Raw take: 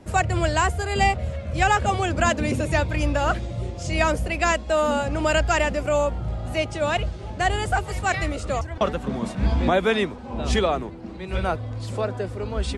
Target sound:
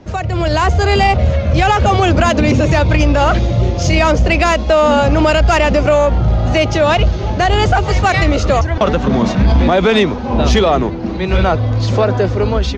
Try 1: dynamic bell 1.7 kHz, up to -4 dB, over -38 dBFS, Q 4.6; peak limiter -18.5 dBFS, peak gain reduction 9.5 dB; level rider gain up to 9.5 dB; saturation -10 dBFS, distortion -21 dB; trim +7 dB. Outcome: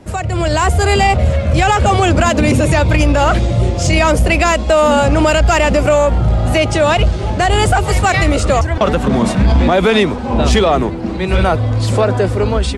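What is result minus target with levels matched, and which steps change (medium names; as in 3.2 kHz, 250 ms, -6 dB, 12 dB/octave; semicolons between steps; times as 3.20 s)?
8 kHz band +5.5 dB
add after dynamic bell: Chebyshev low-pass 6.5 kHz, order 5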